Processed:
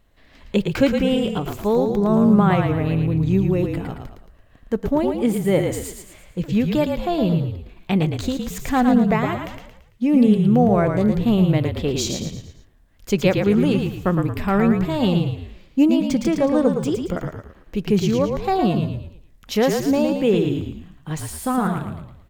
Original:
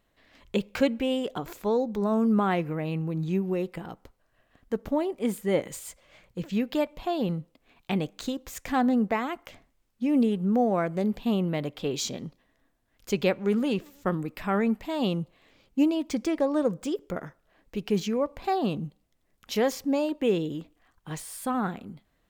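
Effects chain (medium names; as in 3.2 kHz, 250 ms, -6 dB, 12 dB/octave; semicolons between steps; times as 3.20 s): bass shelf 130 Hz +11 dB; on a send: frequency-shifting echo 112 ms, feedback 42%, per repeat -39 Hz, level -5 dB; on the sum: trim +5 dB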